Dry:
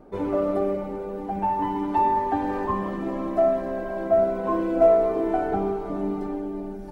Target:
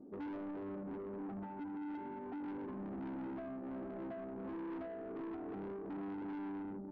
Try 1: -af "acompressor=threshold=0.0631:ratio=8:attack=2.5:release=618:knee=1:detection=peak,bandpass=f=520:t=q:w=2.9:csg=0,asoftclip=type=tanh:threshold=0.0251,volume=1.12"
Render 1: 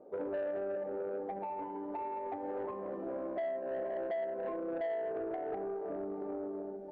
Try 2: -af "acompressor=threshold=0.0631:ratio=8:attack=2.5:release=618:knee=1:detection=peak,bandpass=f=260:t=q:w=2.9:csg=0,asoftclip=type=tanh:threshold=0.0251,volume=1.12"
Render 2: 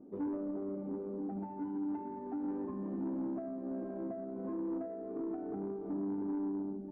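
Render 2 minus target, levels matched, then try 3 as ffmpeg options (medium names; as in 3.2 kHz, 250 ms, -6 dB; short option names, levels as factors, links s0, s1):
saturation: distortion -9 dB
-af "acompressor=threshold=0.0631:ratio=8:attack=2.5:release=618:knee=1:detection=peak,bandpass=f=260:t=q:w=2.9:csg=0,asoftclip=type=tanh:threshold=0.00794,volume=1.12"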